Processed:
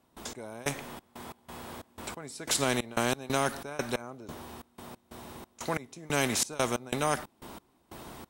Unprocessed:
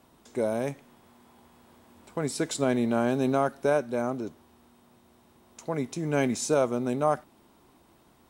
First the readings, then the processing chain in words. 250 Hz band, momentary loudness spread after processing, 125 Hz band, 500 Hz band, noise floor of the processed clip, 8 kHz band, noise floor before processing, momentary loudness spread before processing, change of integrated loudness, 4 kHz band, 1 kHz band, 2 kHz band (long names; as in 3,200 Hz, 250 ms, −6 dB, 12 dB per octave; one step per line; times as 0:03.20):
−7.5 dB, 19 LU, −4.0 dB, −7.0 dB, −68 dBFS, +4.5 dB, −61 dBFS, 11 LU, −3.5 dB, +6.5 dB, −2.0 dB, +2.5 dB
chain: gate pattern ".x..xx.x.xx" 91 BPM −24 dB
every bin compressed towards the loudest bin 2 to 1
level +1 dB